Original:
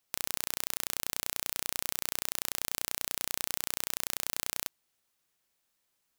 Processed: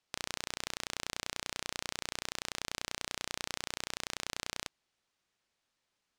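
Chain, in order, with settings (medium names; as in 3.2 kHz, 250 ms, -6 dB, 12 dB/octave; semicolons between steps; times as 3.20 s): low-pass 5.7 kHz 12 dB/octave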